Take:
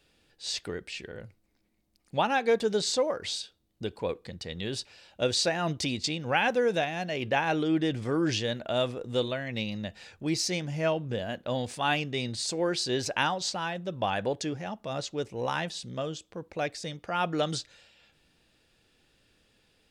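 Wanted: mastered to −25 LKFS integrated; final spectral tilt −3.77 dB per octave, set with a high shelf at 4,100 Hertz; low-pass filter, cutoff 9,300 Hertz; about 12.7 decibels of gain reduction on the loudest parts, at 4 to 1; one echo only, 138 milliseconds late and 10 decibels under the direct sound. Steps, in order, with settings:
low-pass filter 9,300 Hz
high-shelf EQ 4,100 Hz +3.5 dB
downward compressor 4 to 1, threshold −37 dBFS
single-tap delay 138 ms −10 dB
level +14 dB

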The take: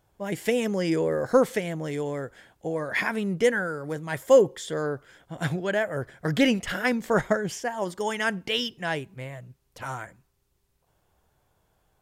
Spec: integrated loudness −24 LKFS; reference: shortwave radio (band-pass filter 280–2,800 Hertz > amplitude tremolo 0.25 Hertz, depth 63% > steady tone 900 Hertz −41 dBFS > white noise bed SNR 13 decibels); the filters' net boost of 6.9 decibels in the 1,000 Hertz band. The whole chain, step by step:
band-pass filter 280–2,800 Hz
parametric band 1,000 Hz +9 dB
amplitude tremolo 0.25 Hz, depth 63%
steady tone 900 Hz −41 dBFS
white noise bed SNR 13 dB
level +4 dB

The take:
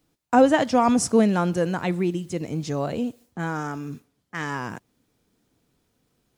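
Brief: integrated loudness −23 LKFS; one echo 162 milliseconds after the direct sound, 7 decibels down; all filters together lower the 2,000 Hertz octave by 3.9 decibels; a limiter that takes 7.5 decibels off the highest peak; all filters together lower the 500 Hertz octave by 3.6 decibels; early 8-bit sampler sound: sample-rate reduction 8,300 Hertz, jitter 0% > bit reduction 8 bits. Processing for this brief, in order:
parametric band 500 Hz −4 dB
parametric band 2,000 Hz −5 dB
brickwall limiter −15 dBFS
single-tap delay 162 ms −7 dB
sample-rate reduction 8,300 Hz, jitter 0%
bit reduction 8 bits
level +3.5 dB

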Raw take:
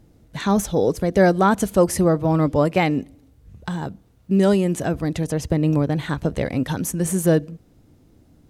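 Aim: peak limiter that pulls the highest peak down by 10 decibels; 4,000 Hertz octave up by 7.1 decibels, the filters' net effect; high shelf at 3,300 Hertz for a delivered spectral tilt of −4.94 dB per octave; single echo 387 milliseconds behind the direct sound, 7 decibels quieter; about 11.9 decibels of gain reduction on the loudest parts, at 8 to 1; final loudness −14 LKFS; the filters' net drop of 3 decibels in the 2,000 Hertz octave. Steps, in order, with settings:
parametric band 2,000 Hz −7.5 dB
high-shelf EQ 3,300 Hz +8 dB
parametric band 4,000 Hz +5.5 dB
downward compressor 8 to 1, threshold −24 dBFS
brickwall limiter −22 dBFS
single-tap delay 387 ms −7 dB
level +17.5 dB

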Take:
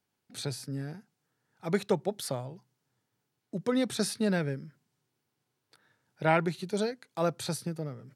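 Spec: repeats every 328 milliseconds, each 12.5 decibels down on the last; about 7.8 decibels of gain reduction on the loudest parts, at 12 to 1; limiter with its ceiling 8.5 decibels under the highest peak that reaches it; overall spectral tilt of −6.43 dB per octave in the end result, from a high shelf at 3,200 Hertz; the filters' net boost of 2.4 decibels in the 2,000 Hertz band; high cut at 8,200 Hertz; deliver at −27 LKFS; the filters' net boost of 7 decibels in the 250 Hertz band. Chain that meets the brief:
low-pass filter 8,200 Hz
parametric band 250 Hz +9 dB
parametric band 2,000 Hz +5.5 dB
high-shelf EQ 3,200 Hz −8 dB
downward compressor 12 to 1, threshold −24 dBFS
brickwall limiter −23.5 dBFS
repeating echo 328 ms, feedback 24%, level −12.5 dB
level +8.5 dB

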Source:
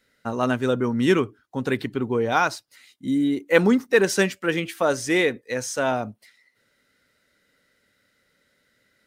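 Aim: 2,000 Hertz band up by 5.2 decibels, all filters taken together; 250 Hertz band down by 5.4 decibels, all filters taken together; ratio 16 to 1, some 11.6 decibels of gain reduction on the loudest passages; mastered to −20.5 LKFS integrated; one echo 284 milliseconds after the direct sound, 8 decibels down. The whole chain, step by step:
parametric band 250 Hz −7 dB
parametric band 2,000 Hz +6.5 dB
downward compressor 16 to 1, threshold −21 dBFS
single-tap delay 284 ms −8 dB
level +6.5 dB

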